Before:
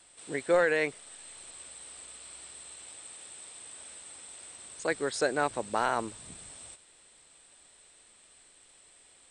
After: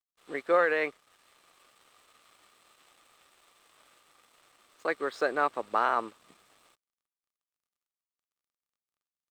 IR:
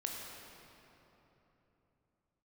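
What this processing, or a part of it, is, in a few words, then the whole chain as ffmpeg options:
pocket radio on a weak battery: -af "highpass=280,lowpass=3400,aeval=exprs='sgn(val(0))*max(abs(val(0))-0.00141,0)':channel_layout=same,equalizer=frequency=1200:width_type=o:width=0.22:gain=11"

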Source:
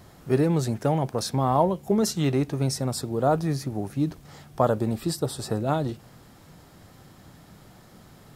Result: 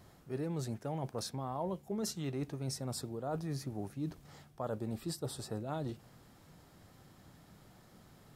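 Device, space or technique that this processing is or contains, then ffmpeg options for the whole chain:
compression on the reversed sound: -af "areverse,acompressor=threshold=-25dB:ratio=6,areverse,volume=-9dB"

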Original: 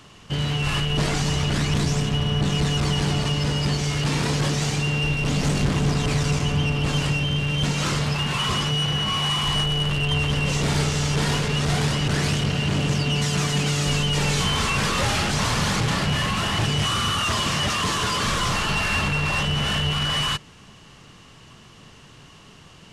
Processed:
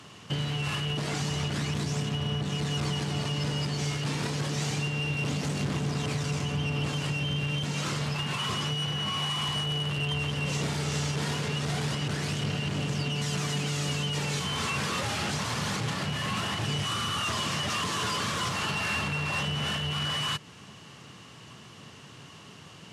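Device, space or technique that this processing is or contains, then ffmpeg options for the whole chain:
podcast mastering chain: -af "highpass=frequency=88:width=0.5412,highpass=frequency=88:width=1.3066,acompressor=threshold=-25dB:ratio=3,alimiter=limit=-20dB:level=0:latency=1:release=236" -ar 32000 -c:a libmp3lame -b:a 96k

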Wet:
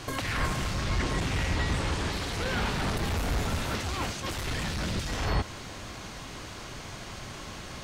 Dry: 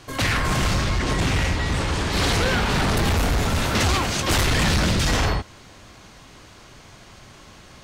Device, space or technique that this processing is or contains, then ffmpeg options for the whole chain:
de-esser from a sidechain: -filter_complex "[0:a]asplit=2[link_01][link_02];[link_02]highpass=frequency=4100:width=0.5412,highpass=frequency=4100:width=1.3066,apad=whole_len=345686[link_03];[link_01][link_03]sidechaincompress=threshold=-46dB:ratio=6:attack=4.5:release=80,volume=5dB"

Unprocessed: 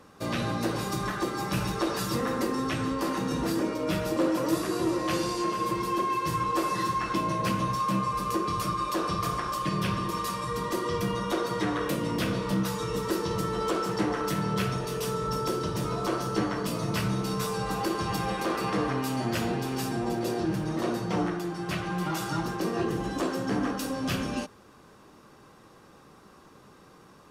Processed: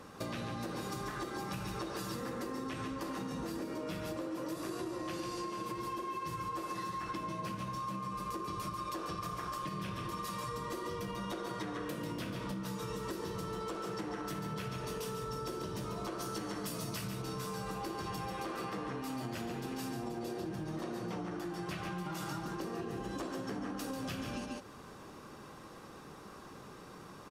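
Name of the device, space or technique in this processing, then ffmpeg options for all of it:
serial compression, peaks first: -filter_complex "[0:a]asettb=1/sr,asplit=3[link_01][link_02][link_03];[link_01]atrim=end=16.194[link_04];[link_02]atrim=start=16.19:end=17.08,asetpts=PTS-STARTPTS,afade=type=in:duration=0.004:curve=qsin,afade=type=out:start_time=0.886:duration=0.004:curve=qsin,highshelf=frequency=4900:gain=11.5[link_05];[link_03]atrim=start=17.076[link_06];[link_04][link_05]acrossfade=duration=0.004:curve1=hsin:curve2=qsin[link_07];[link_07][link_06]acrossfade=duration=0.004:curve1=qsin:curve2=hsin,aecho=1:1:141:0.447,acompressor=threshold=-33dB:ratio=6,acompressor=threshold=-41dB:ratio=2.5,volume=2dB"

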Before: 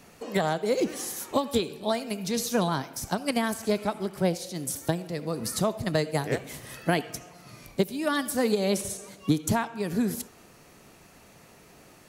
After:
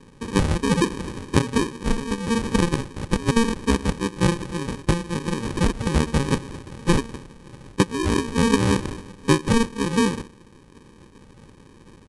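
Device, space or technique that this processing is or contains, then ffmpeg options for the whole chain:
crushed at another speed: -af "asetrate=88200,aresample=44100,acrusher=samples=32:mix=1:aa=0.000001,asetrate=22050,aresample=44100,volume=6dB"

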